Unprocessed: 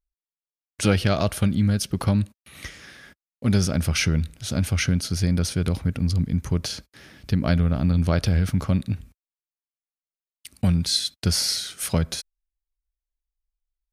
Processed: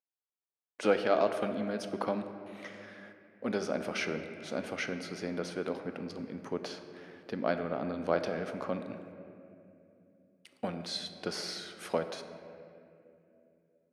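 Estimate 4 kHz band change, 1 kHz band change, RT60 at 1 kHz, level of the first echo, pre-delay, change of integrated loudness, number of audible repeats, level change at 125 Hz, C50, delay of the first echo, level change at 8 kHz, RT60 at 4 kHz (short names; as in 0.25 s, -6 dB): -14.0 dB, -2.0 dB, 2.3 s, none, 4 ms, -11.5 dB, none, -24.5 dB, 8.5 dB, none, -19.0 dB, 1.6 s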